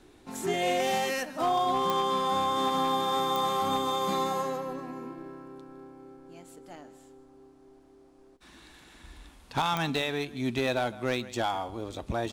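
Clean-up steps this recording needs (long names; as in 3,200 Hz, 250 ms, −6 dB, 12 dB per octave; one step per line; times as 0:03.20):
clipped peaks rebuilt −20 dBFS
click removal
echo removal 160 ms −18 dB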